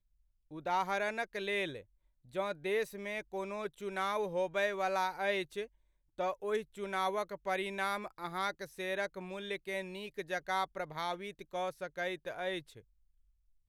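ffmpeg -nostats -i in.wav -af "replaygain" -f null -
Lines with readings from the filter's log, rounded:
track_gain = +16.8 dB
track_peak = 0.069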